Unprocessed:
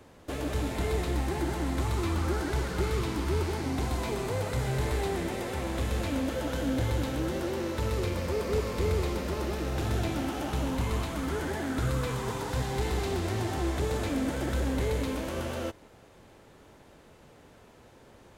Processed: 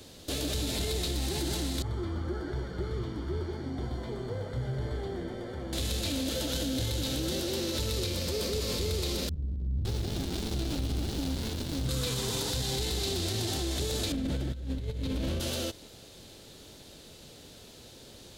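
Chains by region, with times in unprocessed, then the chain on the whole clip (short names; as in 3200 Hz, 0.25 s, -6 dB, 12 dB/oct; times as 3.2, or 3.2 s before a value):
1.82–5.73 polynomial smoothing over 41 samples + resonator 120 Hz, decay 0.25 s, mix 70%
9.29–11.89 bands offset in time lows, highs 0.56 s, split 180 Hz + running maximum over 65 samples
14.12–15.4 tone controls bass +10 dB, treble -12 dB + negative-ratio compressor -28 dBFS, ratio -0.5
whole clip: ten-band EQ 1000 Hz -8 dB, 2000 Hz -5 dB, 4000 Hz +11 dB; limiter -28 dBFS; high shelf 5000 Hz +10 dB; gain +3.5 dB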